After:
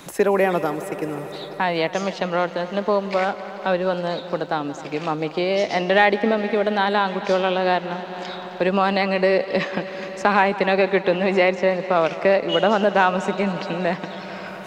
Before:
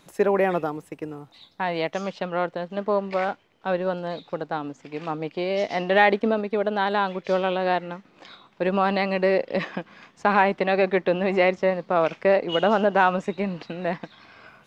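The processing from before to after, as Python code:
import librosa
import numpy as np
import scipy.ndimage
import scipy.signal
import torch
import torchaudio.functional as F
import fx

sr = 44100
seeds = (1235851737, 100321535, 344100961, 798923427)

y = fx.high_shelf(x, sr, hz=4500.0, db=9.0)
y = fx.echo_heads(y, sr, ms=87, heads='second and third', feedback_pct=72, wet_db=-18.5)
y = fx.band_squash(y, sr, depth_pct=40)
y = y * 10.0 ** (2.5 / 20.0)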